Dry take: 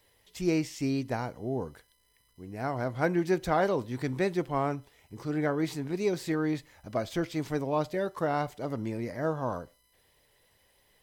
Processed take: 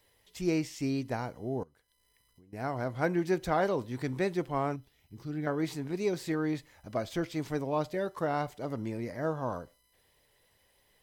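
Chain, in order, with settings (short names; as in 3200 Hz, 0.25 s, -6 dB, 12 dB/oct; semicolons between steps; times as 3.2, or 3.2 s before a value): 1.63–2.53 compressor 8:1, threshold -56 dBFS, peak gain reduction 19 dB; 4.76–5.47 graphic EQ 500/1000/2000/8000 Hz -9/-8/-5/-8 dB; gain -2 dB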